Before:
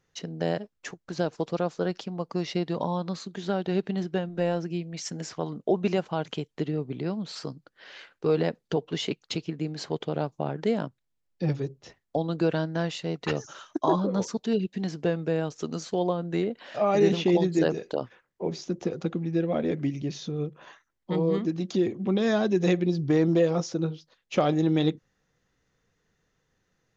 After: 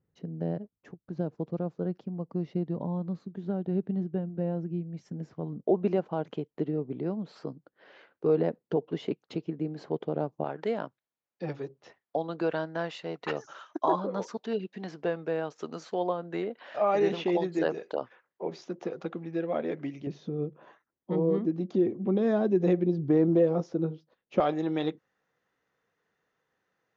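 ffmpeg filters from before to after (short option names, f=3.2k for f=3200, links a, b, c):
-af "asetnsamples=n=441:p=0,asendcmd='5.64 bandpass f 380;10.44 bandpass f 1000;20.07 bandpass f 360;24.4 bandpass f 1000',bandpass=f=140:t=q:w=0.59:csg=0"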